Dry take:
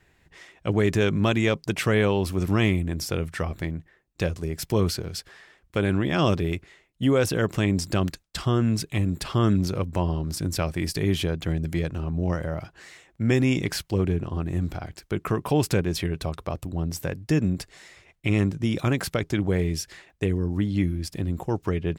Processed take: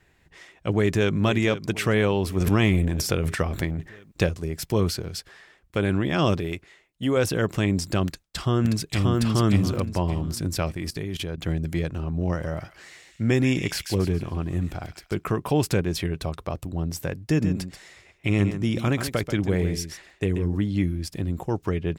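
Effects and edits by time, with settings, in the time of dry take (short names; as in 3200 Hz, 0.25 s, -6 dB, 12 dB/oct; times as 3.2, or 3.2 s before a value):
0.71–1.17 echo throw 0.49 s, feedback 55%, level -13 dB
2.36–4.29 transient shaper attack +5 dB, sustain +12 dB
6.4–7.17 low shelf 250 Hz -6.5 dB
8.06–9.21 echo throw 0.58 s, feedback 30%, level -1 dB
10.72–11.38 level quantiser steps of 15 dB
12.07–15.24 thin delay 0.139 s, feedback 35%, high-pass 2200 Hz, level -4 dB
17.21–20.56 echo 0.134 s -9.5 dB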